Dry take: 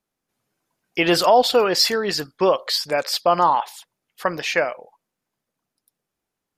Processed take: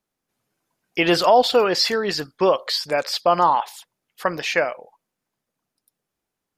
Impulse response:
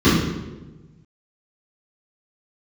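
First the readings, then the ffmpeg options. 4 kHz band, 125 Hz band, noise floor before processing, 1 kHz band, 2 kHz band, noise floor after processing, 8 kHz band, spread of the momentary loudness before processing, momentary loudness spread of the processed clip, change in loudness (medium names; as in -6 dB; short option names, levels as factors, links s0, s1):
-1.5 dB, 0.0 dB, -83 dBFS, 0.0 dB, 0.0 dB, -83 dBFS, -4.0 dB, 12 LU, 12 LU, -0.5 dB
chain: -filter_complex "[0:a]acrossover=split=5900[s0][s1];[s1]acompressor=threshold=0.0178:ratio=4:attack=1:release=60[s2];[s0][s2]amix=inputs=2:normalize=0"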